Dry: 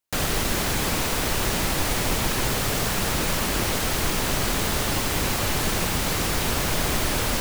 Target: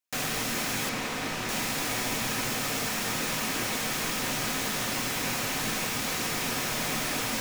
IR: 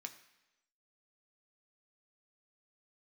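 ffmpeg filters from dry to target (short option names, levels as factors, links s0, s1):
-filter_complex "[0:a]asettb=1/sr,asplit=3[s0][s1][s2];[s0]atrim=end=0.894[s3];[s1]atrim=start=0.89:end=1.49,asetpts=PTS-STARTPTS,afade=t=in:d=0.004:c=qsin,afade=t=out:st=0.596:d=0.004:c=qsin,lowpass=f=3800:p=1[s4];[s2]atrim=start=1.486[s5];[s3][s4]acrossfade=d=0.004:c1=hsin:c2=qsin[s6];[s6][s5]acrossfade=d=0.004:c1=qsin:c2=hsin[s7];[1:a]atrim=start_sample=2205[s8];[s7][s8]afir=irnorm=-1:irlink=0"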